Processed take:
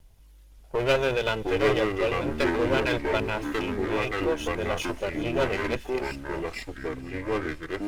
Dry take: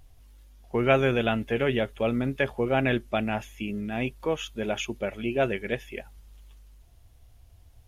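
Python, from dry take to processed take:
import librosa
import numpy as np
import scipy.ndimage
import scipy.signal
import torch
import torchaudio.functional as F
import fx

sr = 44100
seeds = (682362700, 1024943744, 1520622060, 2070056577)

p1 = fx.lower_of_two(x, sr, delay_ms=2.0)
p2 = p1 + fx.echo_wet_highpass(p1, sr, ms=191, feedback_pct=84, hz=4200.0, wet_db=-18, dry=0)
y = fx.echo_pitch(p2, sr, ms=518, semitones=-4, count=2, db_per_echo=-3.0)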